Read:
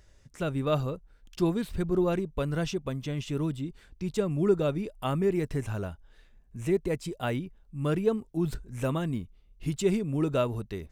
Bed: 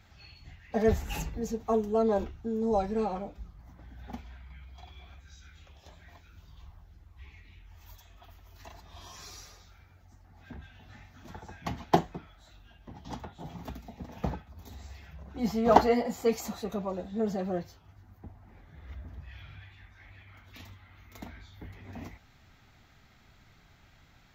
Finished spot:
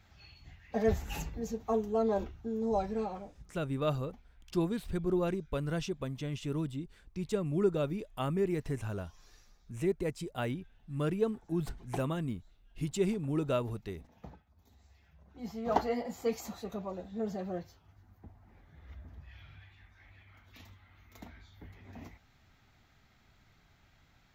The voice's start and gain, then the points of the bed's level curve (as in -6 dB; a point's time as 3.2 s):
3.15 s, -4.5 dB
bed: 2.91 s -3.5 dB
3.9 s -17 dB
14.82 s -17 dB
16.22 s -5.5 dB